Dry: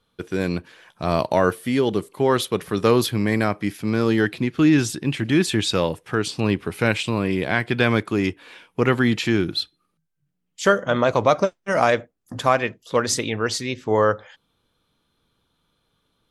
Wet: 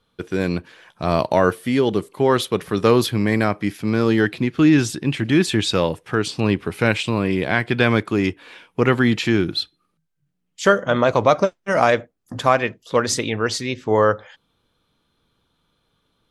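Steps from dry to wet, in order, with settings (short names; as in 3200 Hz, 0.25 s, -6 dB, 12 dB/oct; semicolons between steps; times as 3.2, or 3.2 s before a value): high shelf 8800 Hz -5.5 dB; gain +2 dB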